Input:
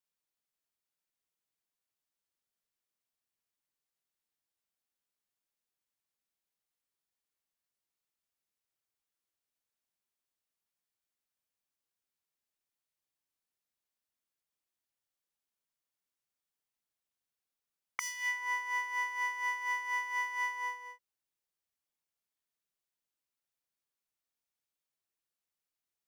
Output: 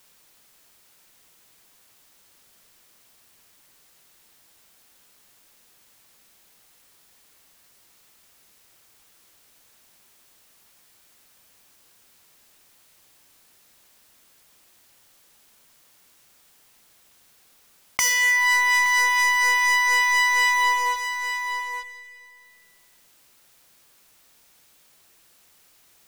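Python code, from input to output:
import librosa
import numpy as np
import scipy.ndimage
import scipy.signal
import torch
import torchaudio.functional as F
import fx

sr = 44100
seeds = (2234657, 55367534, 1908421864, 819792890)

y = fx.highpass(x, sr, hz=fx.line((18.16, 1000.0), (20.85, 600.0)), slope=6, at=(18.16, 20.85), fade=0.02)
y = fx.leveller(y, sr, passes=5)
y = y + 10.0 ** (-16.5 / 20.0) * np.pad(y, (int(869 * sr / 1000.0), 0))[:len(y)]
y = fx.rev_schroeder(y, sr, rt60_s=1.3, comb_ms=32, drr_db=18.0)
y = fx.env_flatten(y, sr, amount_pct=50)
y = F.gain(torch.from_numpy(y), 2.5).numpy()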